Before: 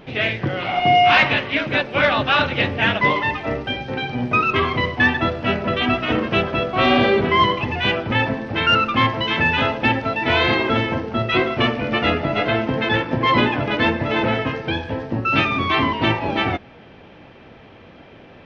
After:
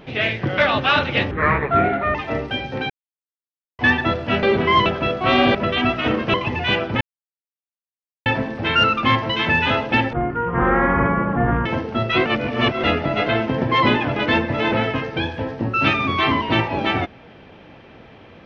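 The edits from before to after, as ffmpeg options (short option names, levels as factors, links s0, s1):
-filter_complex "[0:a]asplit=16[s0][s1][s2][s3][s4][s5][s6][s7][s8][s9][s10][s11][s12][s13][s14][s15];[s0]atrim=end=0.582[s16];[s1]atrim=start=2.008:end=2.744[s17];[s2]atrim=start=2.74:end=3.31,asetpts=PTS-STARTPTS,asetrate=29988,aresample=44100,atrim=end_sample=36966,asetpts=PTS-STARTPTS[s18];[s3]atrim=start=3.306:end=4.06,asetpts=PTS-STARTPTS,afade=t=out:st=0.75:d=0.004:c=hsin[s19];[s4]atrim=start=4.06:end=4.95,asetpts=PTS-STARTPTS,volume=0[s20];[s5]atrim=start=4.95:end=5.592,asetpts=PTS-STARTPTS,afade=t=in:d=0.004:c=hsin[s21];[s6]atrim=start=7.068:end=7.502[s22];[s7]atrim=start=6.378:end=7.072[s23];[s8]atrim=start=5.588:end=6.382[s24];[s9]atrim=start=7.498:end=8.17,asetpts=PTS-STARTPTS,afade=t=out:st=0.668:d=0.004:c=hsin,apad=pad_dur=1.25[s25];[s10]atrim=start=8.17:end=10.044,asetpts=PTS-STARTPTS,afade=t=in:d=0.004:c=hsin[s26];[s11]atrim=start=10.04:end=10.85,asetpts=PTS-STARTPTS,asetrate=23373,aresample=44100,atrim=end_sample=67398,asetpts=PTS-STARTPTS[s27];[s12]atrim=start=10.846:end=11.452[s28];[s13]atrim=start=11.448:end=12.032,asetpts=PTS-STARTPTS,areverse[s29];[s14]atrim=start=12.028:end=12.812[s30];[s15]atrim=start=13.128[s31];[s16][s17]acrossfade=d=0.004:c1=hsin:c2=hsin[s32];[s32][s18]acrossfade=d=0.004:c1=hsin:c2=hsin[s33];[s19][s20][s21]concat=n=3:v=0:a=1[s34];[s33][s34]acrossfade=d=0.004:c1=hsin:c2=hsin[s35];[s35][s22]acrossfade=d=0.004:c1=hsin:c2=hsin[s36];[s36][s23]acrossfade=d=0.004:c1=hsin:c2=hsin[s37];[s37][s24]acrossfade=d=0.004:c1=hsin:c2=hsin[s38];[s25][s26]concat=n=2:v=0:a=1[s39];[s38][s39]acrossfade=d=0.004:c1=hsin:c2=hsin[s40];[s40][s27]acrossfade=d=0.004:c1=hsin:c2=hsin[s41];[s41][s28]acrossfade=d=0.004:c1=hsin:c2=hsin[s42];[s42][s29]acrossfade=d=0.004:c1=hsin:c2=hsin[s43];[s43][s30]acrossfade=d=0.004:c1=hsin:c2=hsin[s44];[s44][s31]acrossfade=d=0.004:c1=hsin:c2=hsin"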